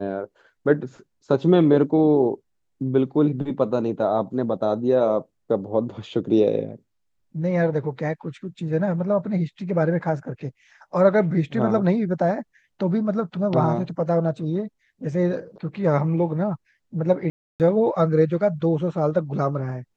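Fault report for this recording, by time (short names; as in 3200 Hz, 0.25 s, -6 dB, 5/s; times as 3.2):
17.3–17.6 gap 0.298 s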